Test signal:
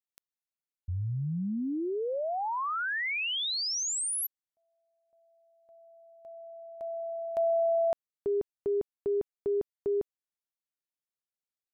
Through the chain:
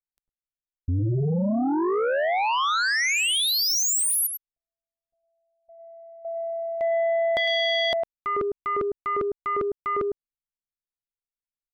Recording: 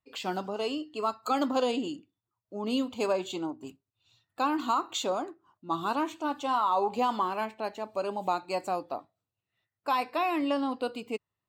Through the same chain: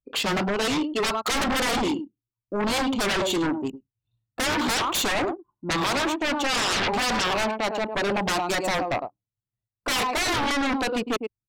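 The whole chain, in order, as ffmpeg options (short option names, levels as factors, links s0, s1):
-filter_complex "[0:a]asplit=2[s0][s1];[s1]adelay=105,volume=0.251,highshelf=f=4000:g=-2.36[s2];[s0][s2]amix=inputs=2:normalize=0,anlmdn=0.0398,aeval=exprs='0.178*sin(PI/2*7.08*val(0)/0.178)':c=same,volume=0.501"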